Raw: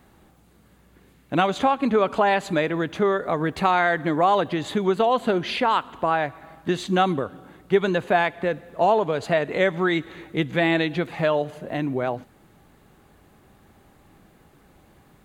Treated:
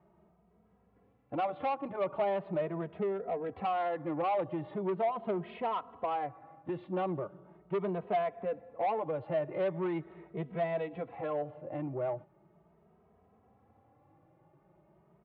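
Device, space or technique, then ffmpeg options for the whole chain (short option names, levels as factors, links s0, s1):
barber-pole flanger into a guitar amplifier: -filter_complex "[0:a]lowpass=1300,asplit=2[s0][s1];[s1]adelay=2.8,afreqshift=0.4[s2];[s0][s2]amix=inputs=2:normalize=1,asoftclip=type=tanh:threshold=0.0841,highpass=100,equalizer=f=260:t=q:w=4:g=-8,equalizer=f=650:t=q:w=4:g=4,equalizer=f=1600:t=q:w=4:g=-8,lowpass=f=3500:w=0.5412,lowpass=f=3500:w=1.3066,asettb=1/sr,asplit=3[s3][s4][s5];[s3]atrim=end=2.954[s6];[s4]atrim=start=2.95:end=3.53,asetpts=PTS-STARTPTS,afade=t=in:d=0.004:c=qsin,afade=t=out:st=0.576:d=0.004:c=qsin,equalizer=f=1100:t=o:w=0.32:g=-12[s7];[s5]atrim=start=3.526[s8];[s6][s7]acrossfade=d=0.004:c1=hsin:c2=qsin[s9];[s9][s8]acrossfade=d=0.004:c1=qsin:c2=hsin,volume=0.531"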